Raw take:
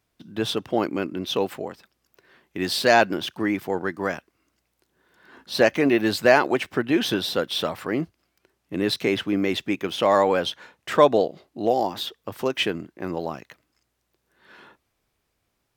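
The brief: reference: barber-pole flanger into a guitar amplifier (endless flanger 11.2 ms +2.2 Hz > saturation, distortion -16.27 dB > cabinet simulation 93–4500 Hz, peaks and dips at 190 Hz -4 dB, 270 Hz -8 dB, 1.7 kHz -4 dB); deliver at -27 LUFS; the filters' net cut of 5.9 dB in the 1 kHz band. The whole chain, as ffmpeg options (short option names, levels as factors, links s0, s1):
-filter_complex "[0:a]equalizer=f=1000:t=o:g=-8,asplit=2[s0][s1];[s1]adelay=11.2,afreqshift=2.2[s2];[s0][s2]amix=inputs=2:normalize=1,asoftclip=threshold=0.141,highpass=93,equalizer=f=190:t=q:w=4:g=-4,equalizer=f=270:t=q:w=4:g=-8,equalizer=f=1700:t=q:w=4:g=-4,lowpass=f=4500:w=0.5412,lowpass=f=4500:w=1.3066,volume=1.68"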